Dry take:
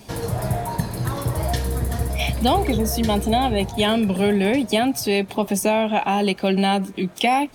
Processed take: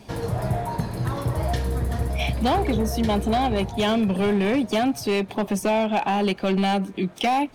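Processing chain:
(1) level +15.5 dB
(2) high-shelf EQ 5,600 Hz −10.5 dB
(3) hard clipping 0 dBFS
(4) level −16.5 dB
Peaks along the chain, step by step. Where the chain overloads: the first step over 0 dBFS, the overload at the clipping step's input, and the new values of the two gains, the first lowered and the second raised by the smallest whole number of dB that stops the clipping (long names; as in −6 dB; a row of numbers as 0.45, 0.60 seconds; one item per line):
+9.5, +8.5, 0.0, −16.5 dBFS
step 1, 8.5 dB
step 1 +6.5 dB, step 4 −7.5 dB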